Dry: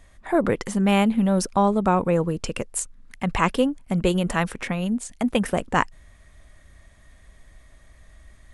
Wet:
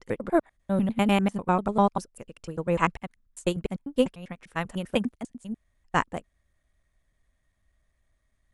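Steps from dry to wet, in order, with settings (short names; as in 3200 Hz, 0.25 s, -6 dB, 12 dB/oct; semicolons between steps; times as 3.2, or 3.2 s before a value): slices in reverse order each 99 ms, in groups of 7; upward expander 2.5:1, over -30 dBFS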